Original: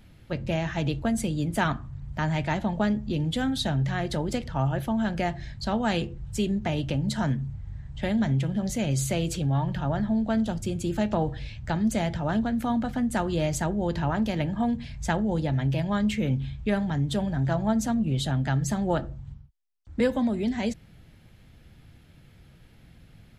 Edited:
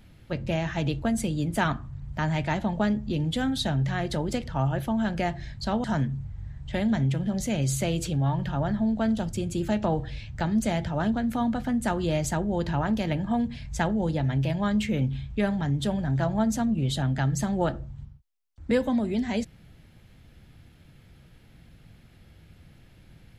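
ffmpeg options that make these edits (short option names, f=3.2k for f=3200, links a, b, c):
-filter_complex "[0:a]asplit=2[a][b];[a]atrim=end=5.842[c];[b]atrim=start=7.128[d];[c][d]acrossfade=d=0.004:c1=hsin:c2=hsin"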